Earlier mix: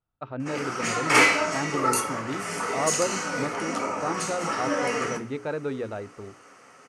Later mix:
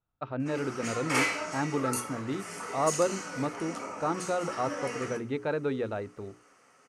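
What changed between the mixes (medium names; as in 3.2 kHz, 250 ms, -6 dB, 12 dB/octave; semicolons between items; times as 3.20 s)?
background -10.0 dB; master: add treble shelf 8.3 kHz +6 dB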